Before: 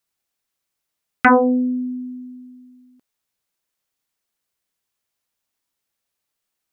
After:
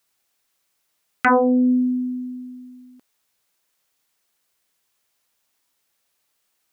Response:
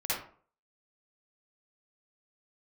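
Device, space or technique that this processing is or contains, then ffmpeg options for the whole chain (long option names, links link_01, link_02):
loud club master: -af "acompressor=threshold=-17dB:ratio=6,asoftclip=type=hard:threshold=-9dB,alimiter=level_in=17.5dB:limit=-1dB:release=50:level=0:latency=1,lowshelf=frequency=270:gain=-6,volume=-9dB"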